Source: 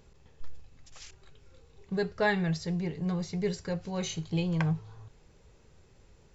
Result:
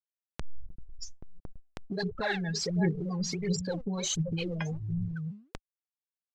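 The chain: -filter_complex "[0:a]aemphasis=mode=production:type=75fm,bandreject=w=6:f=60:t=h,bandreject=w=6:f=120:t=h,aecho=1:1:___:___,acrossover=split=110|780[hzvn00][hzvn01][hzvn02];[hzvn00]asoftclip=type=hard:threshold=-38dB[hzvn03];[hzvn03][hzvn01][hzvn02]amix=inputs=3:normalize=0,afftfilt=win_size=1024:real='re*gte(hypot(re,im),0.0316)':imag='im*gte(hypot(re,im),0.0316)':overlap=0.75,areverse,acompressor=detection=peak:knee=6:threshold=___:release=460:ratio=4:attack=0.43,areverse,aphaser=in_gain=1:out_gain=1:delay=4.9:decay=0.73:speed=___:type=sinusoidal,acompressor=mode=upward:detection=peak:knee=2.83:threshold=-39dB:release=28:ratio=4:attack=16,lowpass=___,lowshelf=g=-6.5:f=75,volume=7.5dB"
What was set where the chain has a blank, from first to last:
556, 0.15, -38dB, 1.4, 6800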